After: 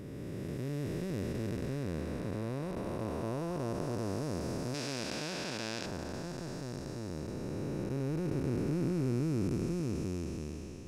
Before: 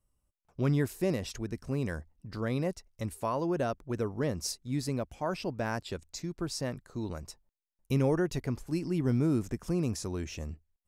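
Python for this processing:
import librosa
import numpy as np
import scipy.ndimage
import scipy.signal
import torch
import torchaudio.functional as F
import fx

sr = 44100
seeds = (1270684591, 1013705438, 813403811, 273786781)

y = fx.spec_blur(x, sr, span_ms=1430.0)
y = fx.weighting(y, sr, curve='D', at=(4.74, 5.86))
y = F.gain(torch.from_numpy(y), 2.5).numpy()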